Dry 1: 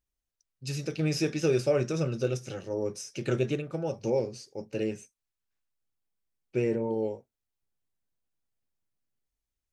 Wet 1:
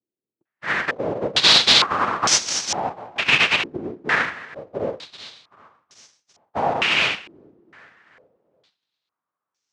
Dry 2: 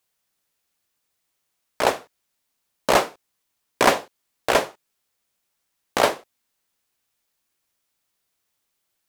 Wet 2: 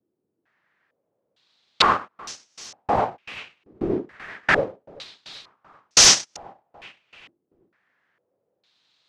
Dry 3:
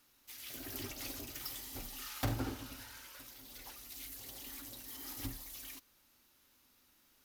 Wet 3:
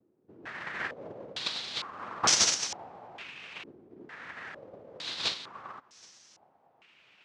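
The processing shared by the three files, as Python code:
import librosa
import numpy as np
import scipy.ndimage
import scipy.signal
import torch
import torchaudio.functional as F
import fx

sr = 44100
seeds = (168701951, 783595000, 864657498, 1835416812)

p1 = fx.notch(x, sr, hz=540.0, q=14.0)
p2 = fx.schmitt(p1, sr, flips_db=-28.0)
p3 = p1 + (p2 * librosa.db_to_amplitude(-11.5))
p4 = fx.noise_vocoder(p3, sr, seeds[0], bands=1)
p5 = fx.fold_sine(p4, sr, drive_db=17, ceiling_db=0.0)
p6 = p5 + fx.echo_feedback(p5, sr, ms=386, feedback_pct=52, wet_db=-22.5, dry=0)
p7 = fx.filter_held_lowpass(p6, sr, hz=2.2, low_hz=350.0, high_hz=5900.0)
y = p7 * librosa.db_to_amplitude(-12.5)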